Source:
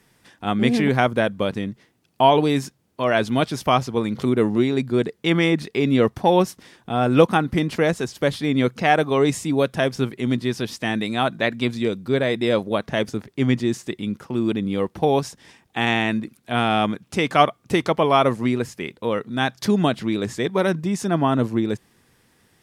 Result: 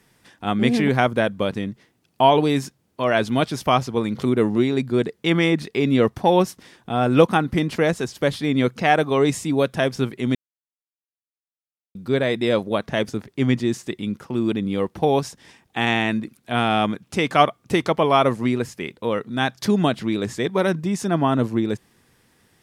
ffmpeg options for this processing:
ffmpeg -i in.wav -filter_complex "[0:a]asplit=3[link_01][link_02][link_03];[link_01]atrim=end=10.35,asetpts=PTS-STARTPTS,afade=type=out:start_time=10.346:duration=0.004:curve=hsin[link_04];[link_02]atrim=start=10.35:end=11.95,asetpts=PTS-STARTPTS,volume=0[link_05];[link_03]atrim=start=11.95,asetpts=PTS-STARTPTS,afade=type=in:duration=0.004:curve=hsin[link_06];[link_04][link_05][link_06]concat=n=3:v=0:a=1" out.wav

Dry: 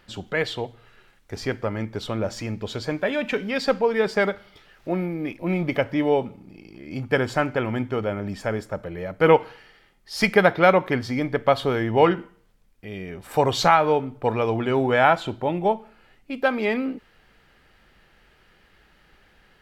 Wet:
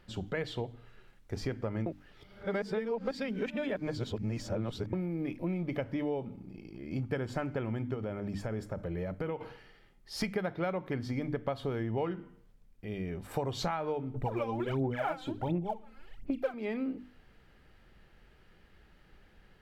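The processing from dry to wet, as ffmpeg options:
ffmpeg -i in.wav -filter_complex "[0:a]asettb=1/sr,asplit=3[link_01][link_02][link_03];[link_01]atrim=end=7.944[link_04];[link_02]atrim=start=7.94:end=9.41,asetpts=PTS-STARTPTS,afade=type=in:duration=0.004:curve=qsin,afade=type=out:start_time=1.466:duration=0.004:curve=qsin,acompressor=threshold=-27dB:ratio=5:attack=3.2:release=140:knee=1:detection=peak[link_05];[link_03]atrim=start=9.406[link_06];[link_04][link_05]acrossfade=duration=0.004:curve1=hsin:curve2=qsin[link_07];[link_07][link_06]acrossfade=duration=0.004:curve1=qsin:curve2=hsin,asettb=1/sr,asplit=3[link_08][link_09][link_10];[link_08]atrim=end=14.144[link_11];[link_09]atrim=start=14.14:end=16.54,asetpts=PTS-STARTPTS,afade=type=in:duration=0.004:curve=qsin,afade=type=out:start_time=2.396:duration=0.004:curve=qsin,aphaser=in_gain=1:out_gain=1:delay=3.9:decay=0.79:speed=1.4:type=sinusoidal[link_12];[link_10]atrim=start=16.536[link_13];[link_11][link_12]acrossfade=duration=0.004:curve1=hsin:curve2=qsin[link_14];[link_14][link_13]acrossfade=duration=0.004:curve1=qsin:curve2=hsin,asplit=3[link_15][link_16][link_17];[link_15]atrim=end=1.862[link_18];[link_16]atrim=start=1.858:end=4.932,asetpts=PTS-STARTPTS,areverse[link_19];[link_17]atrim=start=4.928[link_20];[link_18][link_19]acrossfade=duration=0.004:curve1=hsin:curve2=hsin[link_21];[link_21][link_20]acrossfade=duration=0.004:curve1=hsin:curve2=hsin,lowshelf=frequency=410:gain=10,bandreject=frequency=50:width_type=h:width=6,bandreject=frequency=100:width_type=h:width=6,bandreject=frequency=150:width_type=h:width=6,bandreject=frequency=200:width_type=h:width=6,bandreject=frequency=250:width_type=h:width=6,bandreject=frequency=300:width_type=h:width=6,acompressor=threshold=-22dB:ratio=6,volume=-8.5dB" out.wav

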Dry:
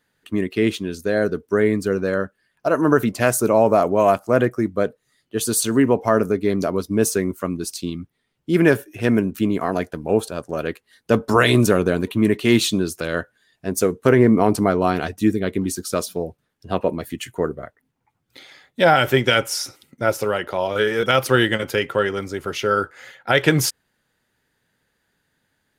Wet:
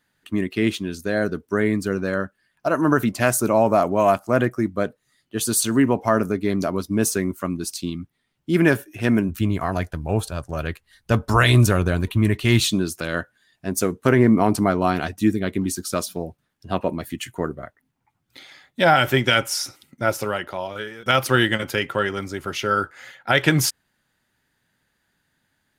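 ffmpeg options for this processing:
ffmpeg -i in.wav -filter_complex "[0:a]asplit=3[link_01][link_02][link_03];[link_01]afade=type=out:start_time=9.28:duration=0.02[link_04];[link_02]asubboost=boost=9:cutoff=86,afade=type=in:start_time=9.28:duration=0.02,afade=type=out:start_time=12.68:duration=0.02[link_05];[link_03]afade=type=in:start_time=12.68:duration=0.02[link_06];[link_04][link_05][link_06]amix=inputs=3:normalize=0,asplit=2[link_07][link_08];[link_07]atrim=end=21.06,asetpts=PTS-STARTPTS,afade=type=out:start_time=20.23:duration=0.83:silence=0.0944061[link_09];[link_08]atrim=start=21.06,asetpts=PTS-STARTPTS,afade=type=in:duration=0.004:curve=hsin:silence=0.0944061[link_10];[link_09][link_10]concat=n=2:v=0:a=1,equalizer=frequency=460:width=3:gain=-7" out.wav

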